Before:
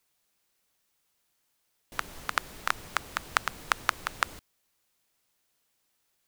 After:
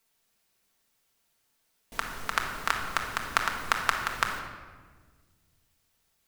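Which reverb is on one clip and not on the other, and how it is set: shoebox room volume 1500 m³, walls mixed, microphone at 1.6 m

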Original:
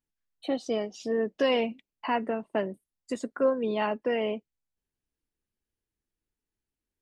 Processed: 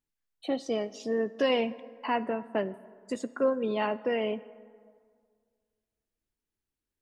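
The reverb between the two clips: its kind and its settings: plate-style reverb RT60 2 s, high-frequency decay 0.5×, DRR 16 dB; gain -1 dB

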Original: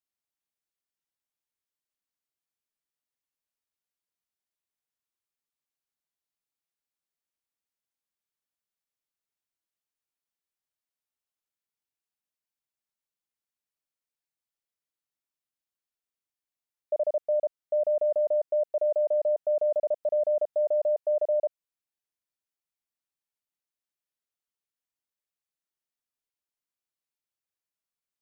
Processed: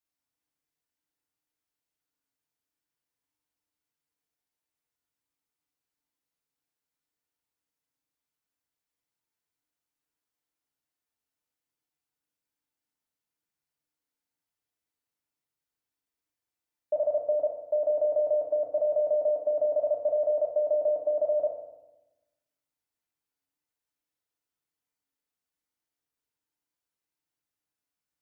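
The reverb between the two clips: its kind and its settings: FDN reverb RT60 0.99 s, low-frequency decay 1.5×, high-frequency decay 0.4×, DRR -3 dB; gain -1.5 dB

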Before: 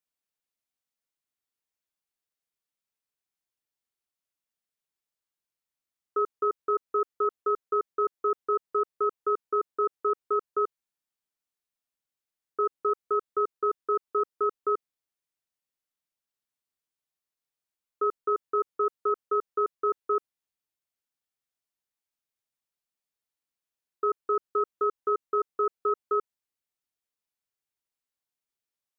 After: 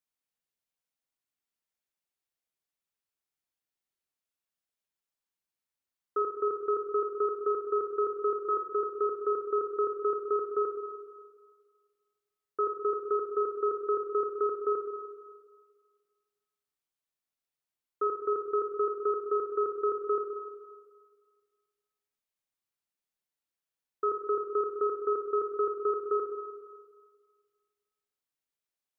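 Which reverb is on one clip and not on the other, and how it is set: spring tank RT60 1.7 s, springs 51/59 ms, chirp 35 ms, DRR 4.5 dB; gain -2.5 dB

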